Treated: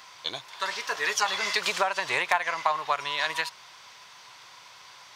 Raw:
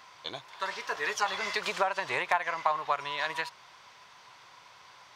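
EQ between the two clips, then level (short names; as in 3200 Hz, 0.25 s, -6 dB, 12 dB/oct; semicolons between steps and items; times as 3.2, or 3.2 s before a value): HPF 51 Hz; high shelf 2500 Hz +9 dB; +1.0 dB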